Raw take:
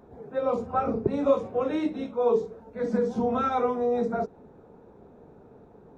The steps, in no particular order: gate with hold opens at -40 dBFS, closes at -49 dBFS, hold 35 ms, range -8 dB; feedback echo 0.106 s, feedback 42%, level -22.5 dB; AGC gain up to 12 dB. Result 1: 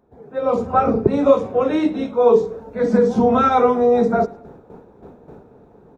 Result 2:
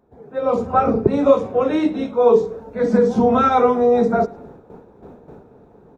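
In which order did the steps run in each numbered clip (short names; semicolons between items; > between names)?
gate with hold > feedback echo > AGC; feedback echo > gate with hold > AGC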